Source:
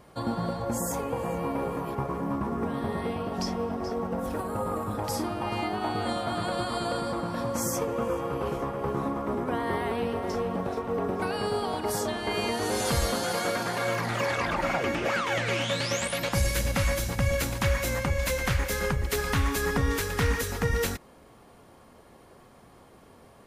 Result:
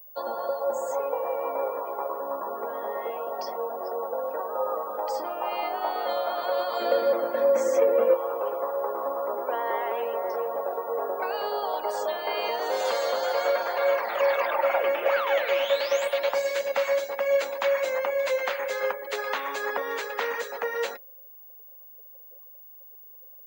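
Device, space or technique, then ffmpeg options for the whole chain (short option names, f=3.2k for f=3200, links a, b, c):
old television with a line whistle: -filter_complex "[0:a]asettb=1/sr,asplit=3[a][b][c];[a]atrim=end=6.794[d];[b]atrim=start=6.79:end=8.14,asetpts=PTS-STARTPTS,afade=t=in:d=0.004:c=qsin,afade=t=out:st=1.346:d=0.004:c=qsin,equalizer=f=125:t=o:w=1:g=12,equalizer=f=250:t=o:w=1:g=9,equalizer=f=500:t=o:w=1:g=5,equalizer=f=1k:t=o:w=1:g=-6,equalizer=f=2k:t=o:w=1:g=7[e];[c]atrim=start=8.136[f];[d][e]acrossfade=d=0.004:c1=hsin:c2=qsin[g];[g][f]acrossfade=d=0.004:c1=qsin:c2=hsin,afftdn=nr=19:nf=-41,highpass=f=460:w=0.5412,highpass=f=460:w=1.3066,highpass=f=200:w=0.5412,highpass=f=200:w=1.3066,equalizer=f=210:t=q:w=4:g=6,equalizer=f=560:t=q:w=4:g=9,equalizer=f=900:t=q:w=4:g=4,equalizer=f=5.5k:t=q:w=4:g=-7,lowpass=f=6.6k:w=0.5412,lowpass=f=6.6k:w=1.3066,aeval=exprs='val(0)+0.00562*sin(2*PI*15625*n/s)':c=same"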